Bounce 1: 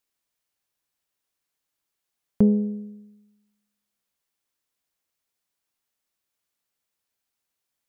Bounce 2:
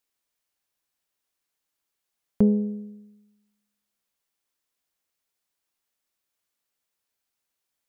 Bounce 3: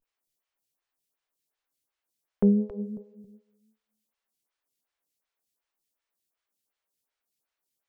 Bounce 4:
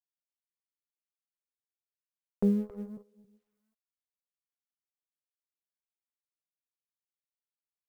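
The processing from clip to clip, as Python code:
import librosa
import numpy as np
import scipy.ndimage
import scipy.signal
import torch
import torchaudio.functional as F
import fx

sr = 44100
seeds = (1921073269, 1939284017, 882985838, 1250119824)

y1 = fx.peak_eq(x, sr, hz=120.0, db=-3.0, octaves=1.5)
y2 = fx.vibrato(y1, sr, rate_hz=0.38, depth_cents=90.0)
y2 = fx.echo_feedback(y2, sr, ms=273, feedback_pct=26, wet_db=-10)
y2 = fx.stagger_phaser(y2, sr, hz=2.7)
y3 = fx.law_mismatch(y2, sr, coded='A')
y3 = y3 * 10.0 ** (-4.5 / 20.0)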